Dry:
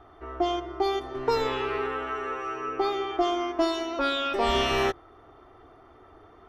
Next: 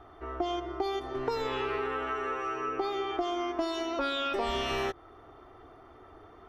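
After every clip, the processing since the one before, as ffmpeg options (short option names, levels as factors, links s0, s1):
-af "acompressor=threshold=0.0398:ratio=6"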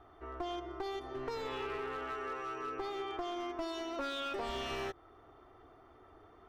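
-af "aeval=exprs='clip(val(0),-1,0.0355)':c=same,volume=0.473"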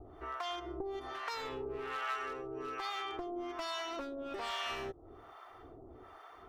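-filter_complex "[0:a]acrossover=split=940|2200[s0][s1][s2];[s0]acompressor=threshold=0.00398:ratio=4[s3];[s1]acompressor=threshold=0.00355:ratio=4[s4];[s2]acompressor=threshold=0.002:ratio=4[s5];[s3][s4][s5]amix=inputs=3:normalize=0,acrossover=split=640[s6][s7];[s6]aeval=exprs='val(0)*(1-1/2+1/2*cos(2*PI*1.2*n/s))':c=same[s8];[s7]aeval=exprs='val(0)*(1-1/2-1/2*cos(2*PI*1.2*n/s))':c=same[s9];[s8][s9]amix=inputs=2:normalize=0,volume=3.35"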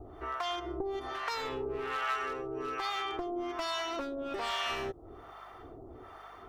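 -af "aeval=exprs='val(0)+0.000316*(sin(2*PI*50*n/s)+sin(2*PI*2*50*n/s)/2+sin(2*PI*3*50*n/s)/3+sin(2*PI*4*50*n/s)/4+sin(2*PI*5*50*n/s)/5)':c=same,volume=1.68"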